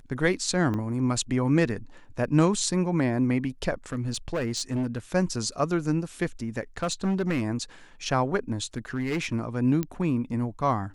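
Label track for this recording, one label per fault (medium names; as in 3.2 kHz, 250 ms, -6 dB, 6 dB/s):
0.740000	0.740000	dropout 2.6 ms
3.920000	4.980000	clipped -23.5 dBFS
6.780000	7.430000	clipped -21.5 dBFS
8.770000	9.340000	clipped -23.5 dBFS
9.830000	9.830000	pop -15 dBFS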